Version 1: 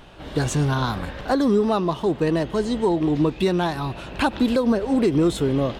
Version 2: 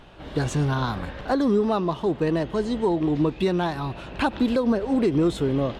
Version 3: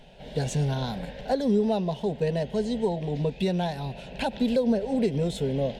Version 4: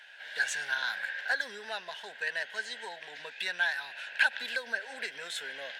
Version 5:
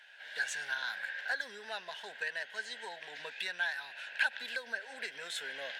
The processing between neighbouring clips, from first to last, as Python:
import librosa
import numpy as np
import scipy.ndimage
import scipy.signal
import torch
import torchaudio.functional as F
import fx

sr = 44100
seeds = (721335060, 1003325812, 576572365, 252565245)

y1 = fx.high_shelf(x, sr, hz=6300.0, db=-8.0)
y1 = y1 * 10.0 ** (-2.0 / 20.0)
y2 = fx.fixed_phaser(y1, sr, hz=320.0, stages=6)
y3 = fx.highpass_res(y2, sr, hz=1600.0, q=9.1)
y4 = fx.recorder_agc(y3, sr, target_db=-21.0, rise_db_per_s=5.2, max_gain_db=30)
y4 = y4 * 10.0 ** (-5.0 / 20.0)